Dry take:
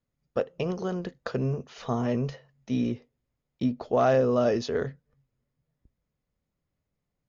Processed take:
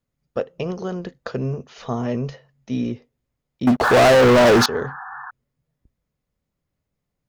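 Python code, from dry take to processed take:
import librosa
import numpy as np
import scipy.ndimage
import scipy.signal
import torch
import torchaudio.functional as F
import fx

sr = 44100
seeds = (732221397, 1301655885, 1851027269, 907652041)

y = fx.spec_paint(x, sr, seeds[0], shape='noise', start_s=3.83, length_s=1.48, low_hz=720.0, high_hz=1800.0, level_db=-38.0)
y = fx.leveller(y, sr, passes=5, at=(3.67, 4.66))
y = y * librosa.db_to_amplitude(3.0)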